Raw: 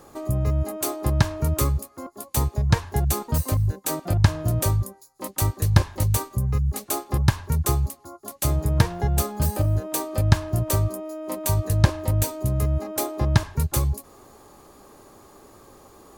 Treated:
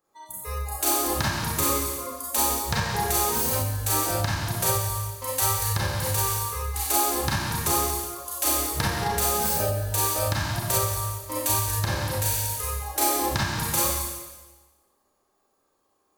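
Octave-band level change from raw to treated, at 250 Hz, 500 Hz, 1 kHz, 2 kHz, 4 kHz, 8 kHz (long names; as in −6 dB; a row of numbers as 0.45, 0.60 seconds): −4.5, −0.5, +5.0, +4.0, +5.5, +6.5 decibels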